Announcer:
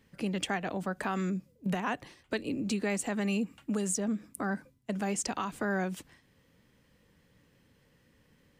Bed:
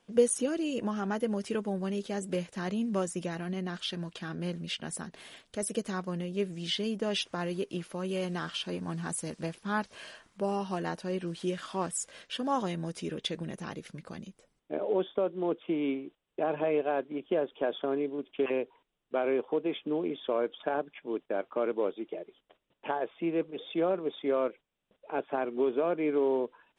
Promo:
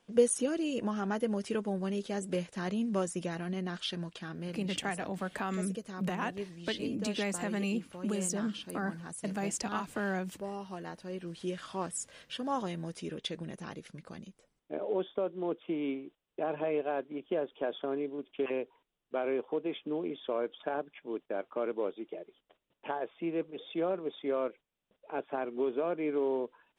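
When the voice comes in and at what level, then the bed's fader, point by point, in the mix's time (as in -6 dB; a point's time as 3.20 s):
4.35 s, -2.5 dB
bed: 3.98 s -1 dB
4.88 s -8.5 dB
10.93 s -8.5 dB
11.54 s -3.5 dB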